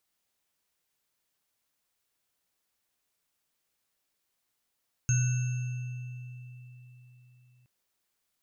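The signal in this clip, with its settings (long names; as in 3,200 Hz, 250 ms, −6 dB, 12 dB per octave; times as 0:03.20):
inharmonic partials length 2.57 s, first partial 124 Hz, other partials 1,490/2,660/6,440 Hz, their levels −18/−18/−7 dB, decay 4.01 s, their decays 1.74/4.25/1.43 s, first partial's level −22 dB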